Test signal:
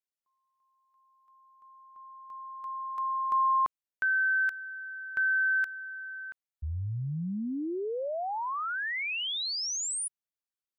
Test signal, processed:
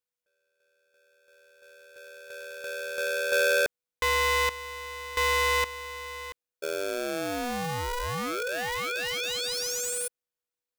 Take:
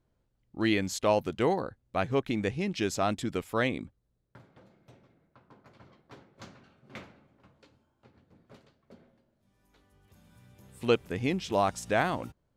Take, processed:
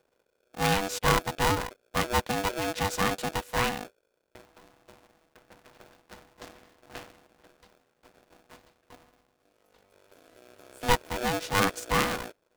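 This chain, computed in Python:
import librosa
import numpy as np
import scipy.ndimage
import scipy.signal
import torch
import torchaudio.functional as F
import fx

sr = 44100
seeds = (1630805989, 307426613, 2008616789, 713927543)

y = np.where(x < 0.0, 10.0 ** (-12.0 / 20.0) * x, x)
y = y * np.sign(np.sin(2.0 * np.pi * 490.0 * np.arange(len(y)) / sr))
y = y * librosa.db_to_amplitude(4.5)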